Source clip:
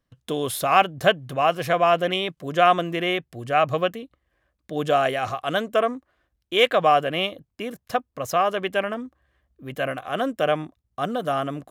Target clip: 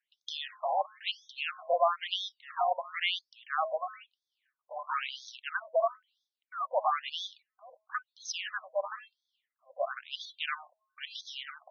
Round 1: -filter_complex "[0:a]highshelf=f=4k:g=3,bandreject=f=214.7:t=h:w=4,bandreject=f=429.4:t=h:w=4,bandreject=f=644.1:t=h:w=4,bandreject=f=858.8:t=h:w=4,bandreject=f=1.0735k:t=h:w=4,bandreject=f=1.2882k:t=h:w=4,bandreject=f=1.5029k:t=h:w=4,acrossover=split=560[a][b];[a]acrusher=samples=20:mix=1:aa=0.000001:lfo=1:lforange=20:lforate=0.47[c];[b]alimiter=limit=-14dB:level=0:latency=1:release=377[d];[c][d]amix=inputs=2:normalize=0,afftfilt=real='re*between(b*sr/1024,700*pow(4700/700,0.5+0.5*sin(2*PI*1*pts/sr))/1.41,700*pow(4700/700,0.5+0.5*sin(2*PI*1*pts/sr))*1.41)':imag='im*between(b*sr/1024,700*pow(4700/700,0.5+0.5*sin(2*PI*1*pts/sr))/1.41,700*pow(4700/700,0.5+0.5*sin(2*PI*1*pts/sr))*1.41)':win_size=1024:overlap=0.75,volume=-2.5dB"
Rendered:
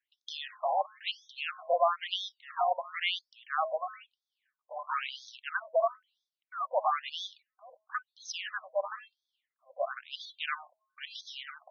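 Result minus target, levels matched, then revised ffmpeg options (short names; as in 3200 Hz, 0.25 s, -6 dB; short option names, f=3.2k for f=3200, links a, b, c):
8000 Hz band -3.0 dB
-filter_complex "[0:a]highshelf=f=4k:g=9,bandreject=f=214.7:t=h:w=4,bandreject=f=429.4:t=h:w=4,bandreject=f=644.1:t=h:w=4,bandreject=f=858.8:t=h:w=4,bandreject=f=1.0735k:t=h:w=4,bandreject=f=1.2882k:t=h:w=4,bandreject=f=1.5029k:t=h:w=4,acrossover=split=560[a][b];[a]acrusher=samples=20:mix=1:aa=0.000001:lfo=1:lforange=20:lforate=0.47[c];[b]alimiter=limit=-14dB:level=0:latency=1:release=377[d];[c][d]amix=inputs=2:normalize=0,afftfilt=real='re*between(b*sr/1024,700*pow(4700/700,0.5+0.5*sin(2*PI*1*pts/sr))/1.41,700*pow(4700/700,0.5+0.5*sin(2*PI*1*pts/sr))*1.41)':imag='im*between(b*sr/1024,700*pow(4700/700,0.5+0.5*sin(2*PI*1*pts/sr))/1.41,700*pow(4700/700,0.5+0.5*sin(2*PI*1*pts/sr))*1.41)':win_size=1024:overlap=0.75,volume=-2.5dB"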